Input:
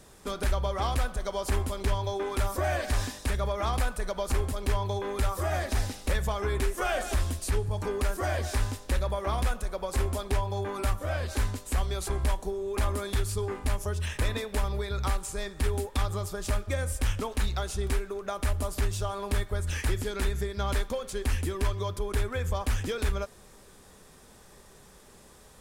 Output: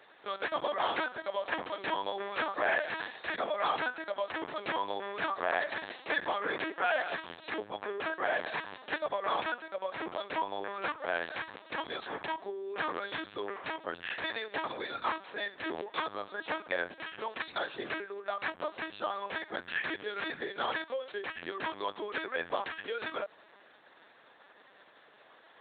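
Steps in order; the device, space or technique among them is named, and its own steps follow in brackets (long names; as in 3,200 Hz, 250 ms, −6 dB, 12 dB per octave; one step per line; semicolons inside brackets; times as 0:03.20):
talking toy (linear-prediction vocoder at 8 kHz pitch kept; high-pass filter 540 Hz 12 dB per octave; parametric band 1,700 Hz +6 dB 0.27 octaves)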